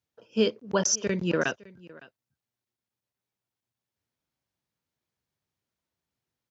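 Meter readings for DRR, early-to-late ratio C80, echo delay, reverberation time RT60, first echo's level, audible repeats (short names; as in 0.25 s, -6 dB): none, none, 0.56 s, none, -22.0 dB, 1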